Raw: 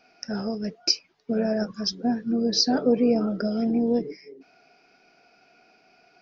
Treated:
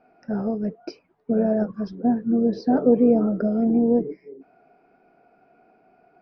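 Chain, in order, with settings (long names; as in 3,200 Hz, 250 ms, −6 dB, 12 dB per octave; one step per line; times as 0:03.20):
low-pass filter 1,000 Hz 12 dB per octave
level +4 dB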